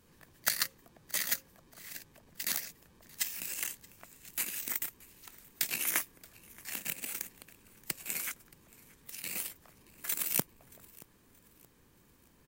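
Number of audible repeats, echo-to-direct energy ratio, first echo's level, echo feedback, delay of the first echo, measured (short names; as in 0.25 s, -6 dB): 2, -23.0 dB, -23.5 dB, 39%, 0.626 s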